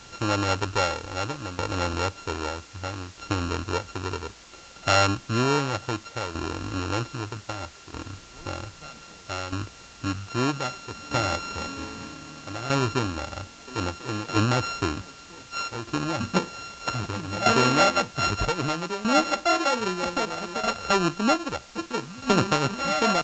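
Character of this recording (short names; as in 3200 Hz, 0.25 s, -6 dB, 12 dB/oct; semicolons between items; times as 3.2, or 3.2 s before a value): a buzz of ramps at a fixed pitch in blocks of 32 samples; tremolo saw down 0.63 Hz, depth 75%; a quantiser's noise floor 8-bit, dither triangular; A-law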